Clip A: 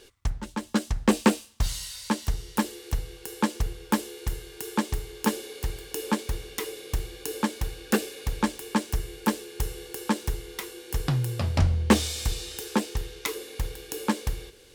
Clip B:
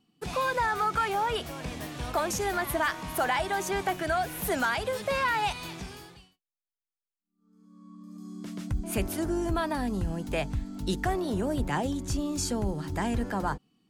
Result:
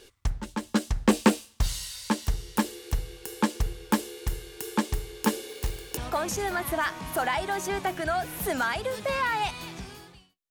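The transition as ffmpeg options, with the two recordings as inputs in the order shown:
ffmpeg -i cue0.wav -i cue1.wav -filter_complex "[0:a]asettb=1/sr,asplit=3[link_01][link_02][link_03];[link_01]atrim=end=5.484[link_04];[link_02]atrim=start=5.48:end=5.97,asetpts=PTS-STARTPTS,afade=type=in:duration=0.004:curve=qsin,afade=type=out:start_time=0.486:duration=0.004:curve=qsin,acrusher=bits=3:mode=log:mix=0:aa=0.000001[link_05];[link_03]atrim=start=5.966[link_06];[link_04][link_05]acrossfade=duration=0.004:curve1=hsin:curve2=qsin[link_07];[link_07][link_06]acrossfade=duration=0.004:curve1=qsin:curve2=hsin,apad=whole_dur=10.5,atrim=end=10.5,atrim=end=5.972[link_08];[1:a]atrim=start=1.988:end=6.52[link_09];[link_08][link_09]acrossfade=duration=0.004:curve1=hsin:curve2=hsin" out.wav

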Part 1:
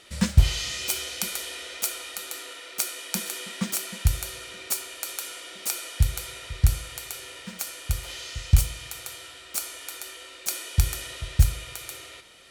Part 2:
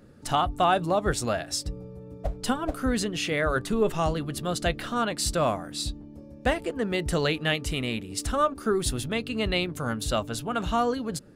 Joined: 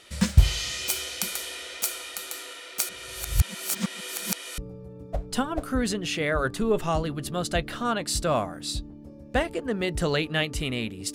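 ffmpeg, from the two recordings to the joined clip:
ffmpeg -i cue0.wav -i cue1.wav -filter_complex "[0:a]apad=whole_dur=11.14,atrim=end=11.14,asplit=2[link_01][link_02];[link_01]atrim=end=2.892[link_03];[link_02]atrim=start=2.888:end=4.582,asetpts=PTS-STARTPTS,areverse[link_04];[1:a]atrim=start=1.688:end=8.25[link_05];[link_03][link_04]acrossfade=duration=0.004:curve1=hsin:curve2=hsin[link_06];[link_06][link_05]acrossfade=duration=0.004:curve1=hsin:curve2=hsin" out.wav

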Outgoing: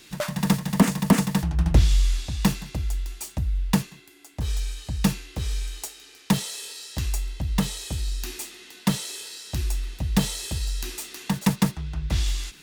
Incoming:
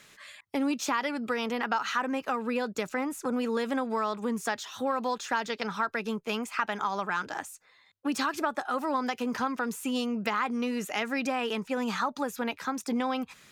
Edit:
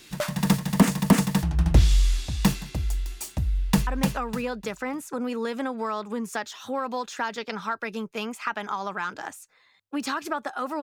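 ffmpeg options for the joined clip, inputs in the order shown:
ffmpeg -i cue0.wav -i cue1.wav -filter_complex "[0:a]apad=whole_dur=10.82,atrim=end=10.82,atrim=end=3.872[link_01];[1:a]atrim=start=1.988:end=8.94[link_02];[link_01][link_02]acrossfade=duration=0.004:curve1=hsin:curve2=hsin,asplit=2[link_03][link_04];[link_04]afade=type=in:start_time=3.47:duration=0.01,afade=type=out:start_time=3.87:duration=0.01,aecho=0:1:300|600|900|1200:0.707946|0.212384|0.0637151|0.0191145[link_05];[link_03][link_05]amix=inputs=2:normalize=0" out.wav

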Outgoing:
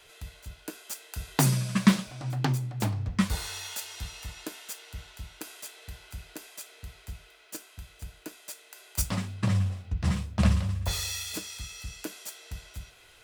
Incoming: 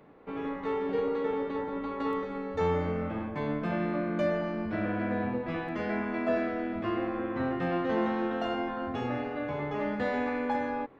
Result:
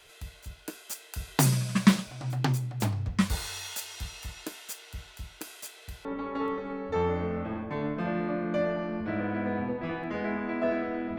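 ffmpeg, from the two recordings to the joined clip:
ffmpeg -i cue0.wav -i cue1.wav -filter_complex "[0:a]apad=whole_dur=11.18,atrim=end=11.18,atrim=end=6.052[link_01];[1:a]atrim=start=1.698:end=6.83[link_02];[link_01][link_02]acrossfade=duration=0.004:curve1=hsin:curve2=hsin" out.wav

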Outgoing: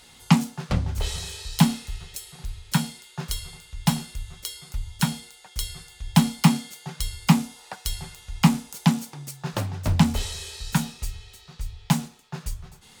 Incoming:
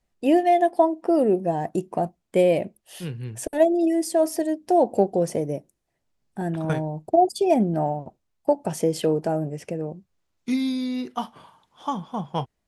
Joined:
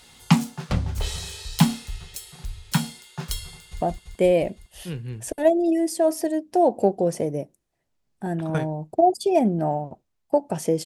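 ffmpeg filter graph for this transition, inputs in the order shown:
ffmpeg -i cue0.wav -i cue1.wav -filter_complex "[0:a]apad=whole_dur=10.85,atrim=end=10.85,atrim=end=3.812[link_01];[1:a]atrim=start=1.958:end=9[link_02];[link_01][link_02]acrossfade=duration=0.004:curve1=hsin:curve2=hsin,asplit=2[link_03][link_04];[link_04]afade=type=in:start_time=3.54:duration=0.01,afade=type=out:start_time=3.81:duration=0.01,aecho=0:1:170|340|510|680|850|1020|1190|1360|1530|1700|1870|2040:0.749894|0.562421|0.421815|0.316362|0.237271|0.177953|0.133465|0.100099|0.0750741|0.0563056|0.0422292|0.0316719[link_05];[link_03][link_05]amix=inputs=2:normalize=0" out.wav

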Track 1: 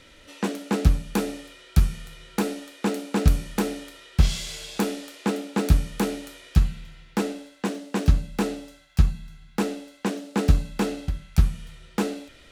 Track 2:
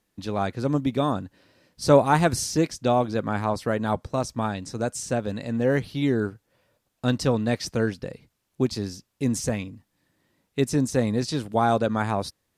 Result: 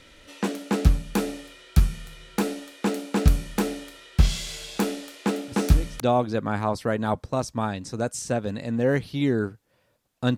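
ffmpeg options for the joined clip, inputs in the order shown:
ffmpeg -i cue0.wav -i cue1.wav -filter_complex "[1:a]asplit=2[link_01][link_02];[0:a]apad=whole_dur=10.37,atrim=end=10.37,atrim=end=6.002[link_03];[link_02]atrim=start=2.808:end=7.18[link_04];[link_01]atrim=start=2.29:end=2.81,asetpts=PTS-STARTPTS,volume=-14dB,afade=type=in:duration=0.004:curve=hsin,afade=type=out:start_time=0.516:duration=0.004:curve=hsin,adelay=5480[link_05];[link_03][link_04]acrossfade=duration=0.004:curve1=hsin:curve2=hsin[link_06];[link_06][link_05]amix=inputs=2:normalize=0" out.wav

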